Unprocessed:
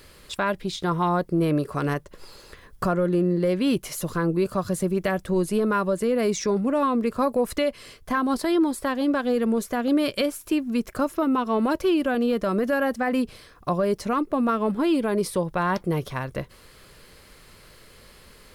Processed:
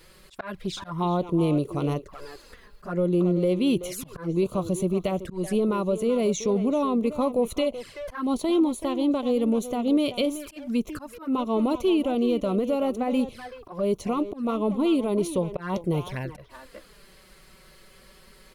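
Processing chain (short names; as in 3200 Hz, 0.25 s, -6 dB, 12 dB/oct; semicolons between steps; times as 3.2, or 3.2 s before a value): speakerphone echo 0.38 s, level -10 dB; auto swell 0.177 s; envelope flanger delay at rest 6.7 ms, full sweep at -23.5 dBFS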